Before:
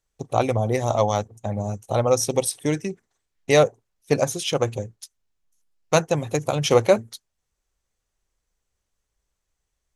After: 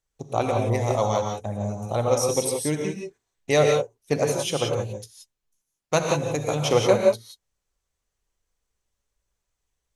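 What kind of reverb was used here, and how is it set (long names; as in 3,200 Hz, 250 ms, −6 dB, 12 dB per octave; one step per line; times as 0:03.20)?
reverb whose tail is shaped and stops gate 200 ms rising, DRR 1.5 dB
level −3.5 dB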